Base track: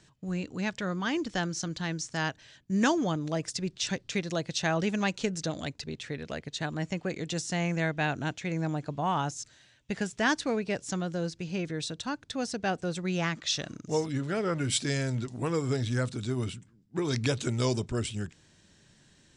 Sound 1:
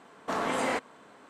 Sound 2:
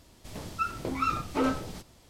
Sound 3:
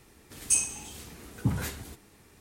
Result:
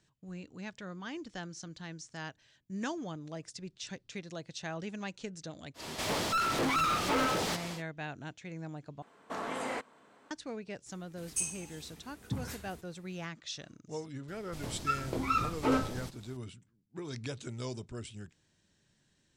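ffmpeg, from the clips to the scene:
-filter_complex "[2:a]asplit=2[a][b];[0:a]volume=-11.5dB[c];[a]asplit=2[d][e];[e]highpass=f=720:p=1,volume=36dB,asoftclip=type=tanh:threshold=-14.5dB[f];[d][f]amix=inputs=2:normalize=0,lowpass=f=3.9k:p=1,volume=-6dB[g];[c]asplit=2[h][i];[h]atrim=end=9.024[j];[1:a]atrim=end=1.29,asetpts=PTS-STARTPTS,volume=-7.5dB[k];[i]atrim=start=10.306[l];[g]atrim=end=2.09,asetpts=PTS-STARTPTS,volume=-8dB,afade=t=in:d=0.1,afade=t=out:st=1.99:d=0.1,adelay=5740[m];[3:a]atrim=end=2.4,asetpts=PTS-STARTPTS,volume=-9dB,afade=t=in:d=0.004:c=hsin,afade=t=out:st=2.396:d=0.004:c=hsin,adelay=10860[n];[b]atrim=end=2.09,asetpts=PTS-STARTPTS,volume=-1.5dB,afade=t=in:d=0.004:c=hsin,afade=t=out:st=2.086:d=0.004:c=hsin,adelay=629748S[o];[j][k]acrossfade=d=0.004:c1=hsin:c2=hsin[p];[p][l]acrossfade=d=0.004:c1=hsin:c2=hsin[q];[q][m][n][o]amix=inputs=4:normalize=0"

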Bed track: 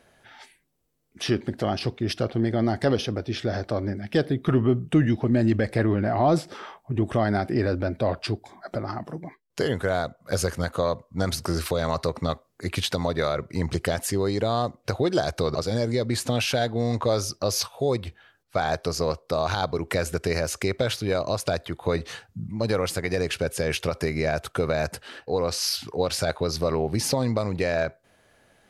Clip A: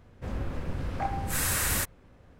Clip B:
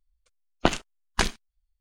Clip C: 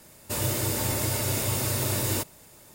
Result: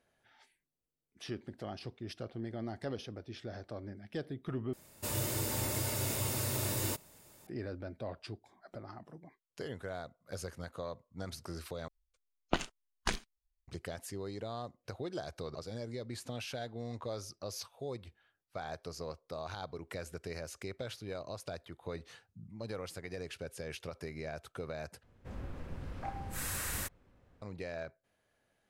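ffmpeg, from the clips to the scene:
-filter_complex "[0:a]volume=-17dB,asplit=4[a][b][c][d];[a]atrim=end=4.734[e];[3:a]atrim=end=2.74,asetpts=PTS-STARTPTS,volume=-7.5dB[f];[b]atrim=start=7.466:end=11.884[g];[2:a]atrim=end=1.8,asetpts=PTS-STARTPTS,volume=-10dB[h];[c]atrim=start=13.676:end=25.034[i];[1:a]atrim=end=2.39,asetpts=PTS-STARTPTS,volume=-10dB[j];[d]atrim=start=27.416[k];[e][f]acrossfade=d=0.004:c1=hsin:c2=hsin[l];[l][g]acrossfade=d=0.004:c1=hsin:c2=hsin[m];[m][h]acrossfade=d=0.004:c1=hsin:c2=hsin[n];[n][i]acrossfade=d=0.004:c1=hsin:c2=hsin[o];[o][j]acrossfade=d=0.004:c1=hsin:c2=hsin[p];[p][k]acrossfade=d=0.004:c1=hsin:c2=hsin"

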